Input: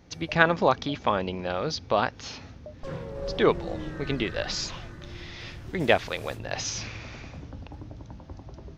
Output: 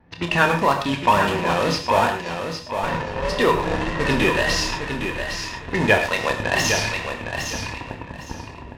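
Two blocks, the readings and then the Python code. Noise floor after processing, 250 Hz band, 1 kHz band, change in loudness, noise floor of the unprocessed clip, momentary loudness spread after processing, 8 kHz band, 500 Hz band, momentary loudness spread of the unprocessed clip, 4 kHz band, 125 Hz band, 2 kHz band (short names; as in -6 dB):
-38 dBFS, +6.5 dB, +8.5 dB, +6.0 dB, -47 dBFS, 11 LU, +8.0 dB, +5.0 dB, 19 LU, +7.5 dB, +7.0 dB, +8.5 dB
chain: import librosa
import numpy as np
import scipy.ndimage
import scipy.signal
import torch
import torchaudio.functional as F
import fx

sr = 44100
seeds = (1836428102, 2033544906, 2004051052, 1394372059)

p1 = scipy.signal.sosfilt(scipy.signal.butter(2, 6300.0, 'lowpass', fs=sr, output='sos'), x)
p2 = fx.fuzz(p1, sr, gain_db=40.0, gate_db=-33.0)
p3 = p1 + (p2 * 10.0 ** (-8.0 / 20.0))
p4 = fx.rider(p3, sr, range_db=3, speed_s=0.5)
p5 = fx.small_body(p4, sr, hz=(970.0, 1800.0, 2600.0), ring_ms=45, db=14)
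p6 = fx.env_lowpass(p5, sr, base_hz=2100.0, full_db=-15.0)
p7 = fx.wow_flutter(p6, sr, seeds[0], rate_hz=2.1, depth_cents=96.0)
p8 = fx.doubler(p7, sr, ms=29.0, db=-8.5)
p9 = p8 + fx.echo_feedback(p8, sr, ms=810, feedback_pct=23, wet_db=-7, dry=0)
p10 = fx.rev_gated(p9, sr, seeds[1], gate_ms=140, shape='flat', drr_db=6.0)
y = p10 * 10.0 ** (-2.0 / 20.0)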